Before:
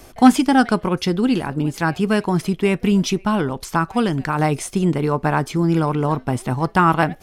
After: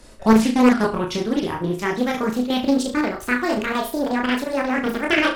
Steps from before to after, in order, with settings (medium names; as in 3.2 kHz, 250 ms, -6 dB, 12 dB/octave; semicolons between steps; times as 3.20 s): gliding tape speed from 81% -> 189%; chorus voices 6, 0.38 Hz, delay 26 ms, depth 2.7 ms; square tremolo 5.6 Hz, depth 60%, duty 85%; on a send: flutter echo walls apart 6.2 m, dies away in 0.34 s; on the sum: loudspeaker Doppler distortion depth 0.73 ms